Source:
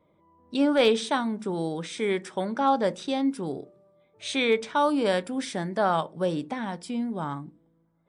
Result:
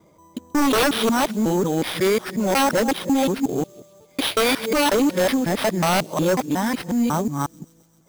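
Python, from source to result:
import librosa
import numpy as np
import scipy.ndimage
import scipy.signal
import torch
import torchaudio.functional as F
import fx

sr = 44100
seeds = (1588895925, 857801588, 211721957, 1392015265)

y = fx.local_reverse(x, sr, ms=182.0)
y = fx.fold_sine(y, sr, drive_db=9, ceiling_db=-12.0)
y = fx.sample_hold(y, sr, seeds[0], rate_hz=7000.0, jitter_pct=0)
y = fx.echo_wet_highpass(y, sr, ms=132, feedback_pct=75, hz=4300.0, wet_db=-21.5)
y = F.gain(torch.from_numpy(y), -2.5).numpy()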